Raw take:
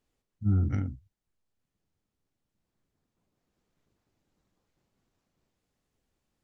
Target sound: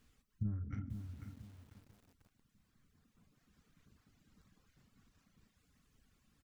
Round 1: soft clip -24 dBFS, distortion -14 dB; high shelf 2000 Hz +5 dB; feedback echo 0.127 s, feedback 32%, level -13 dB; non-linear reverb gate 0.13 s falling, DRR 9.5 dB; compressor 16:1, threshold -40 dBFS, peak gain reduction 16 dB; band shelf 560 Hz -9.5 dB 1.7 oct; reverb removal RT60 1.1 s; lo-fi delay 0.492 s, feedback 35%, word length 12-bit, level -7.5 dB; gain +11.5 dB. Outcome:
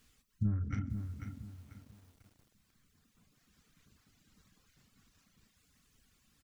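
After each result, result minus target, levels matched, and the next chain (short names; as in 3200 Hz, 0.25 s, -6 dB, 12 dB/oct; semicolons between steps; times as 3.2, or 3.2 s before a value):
compressor: peak gain reduction -6 dB; 2000 Hz band +3.5 dB
soft clip -24 dBFS, distortion -14 dB; high shelf 2000 Hz +5 dB; feedback echo 0.127 s, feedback 32%, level -13 dB; non-linear reverb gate 0.13 s falling, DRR 9.5 dB; compressor 16:1, threshold -46.5 dBFS, peak gain reduction 22 dB; band shelf 560 Hz -9.5 dB 1.7 oct; reverb removal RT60 1.1 s; lo-fi delay 0.492 s, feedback 35%, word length 12-bit, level -7.5 dB; gain +11.5 dB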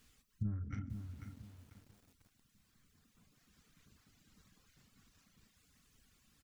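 2000 Hz band +4.0 dB
soft clip -24 dBFS, distortion -14 dB; high shelf 2000 Hz -3.5 dB; feedback echo 0.127 s, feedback 32%, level -13 dB; non-linear reverb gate 0.13 s falling, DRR 9.5 dB; compressor 16:1, threshold -46.5 dBFS, peak gain reduction 22 dB; band shelf 560 Hz -9.5 dB 1.7 oct; reverb removal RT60 1.1 s; lo-fi delay 0.492 s, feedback 35%, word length 12-bit, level -7.5 dB; gain +11.5 dB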